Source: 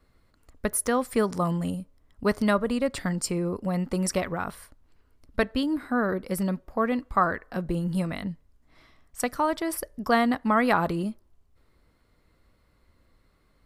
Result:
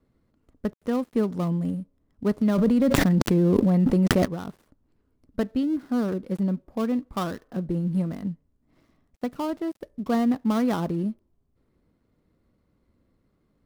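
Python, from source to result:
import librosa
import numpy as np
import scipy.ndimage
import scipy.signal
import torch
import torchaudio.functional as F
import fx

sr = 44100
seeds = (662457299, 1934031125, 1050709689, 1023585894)

y = fx.dead_time(x, sr, dead_ms=0.15)
y = fx.peak_eq(y, sr, hz=220.0, db=14.5, octaves=3.0)
y = fx.env_flatten(y, sr, amount_pct=100, at=(2.56, 4.24), fade=0.02)
y = y * librosa.db_to_amplitude(-11.5)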